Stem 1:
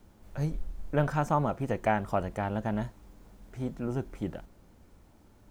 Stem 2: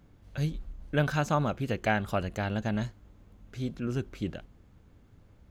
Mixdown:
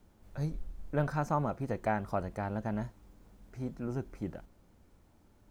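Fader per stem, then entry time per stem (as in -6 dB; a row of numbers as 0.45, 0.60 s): -5.5, -18.0 dB; 0.00, 0.00 s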